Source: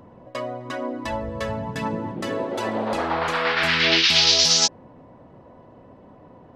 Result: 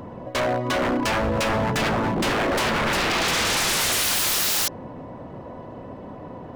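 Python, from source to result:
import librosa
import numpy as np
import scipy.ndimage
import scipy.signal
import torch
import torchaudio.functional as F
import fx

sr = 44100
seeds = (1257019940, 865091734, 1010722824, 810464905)

p1 = fx.over_compress(x, sr, threshold_db=-24.0, ratio=-1.0)
p2 = x + (p1 * librosa.db_to_amplitude(2.0))
p3 = 10.0 ** (-19.0 / 20.0) * (np.abs((p2 / 10.0 ** (-19.0 / 20.0) + 3.0) % 4.0 - 2.0) - 1.0)
y = p3 * librosa.db_to_amplitude(1.5)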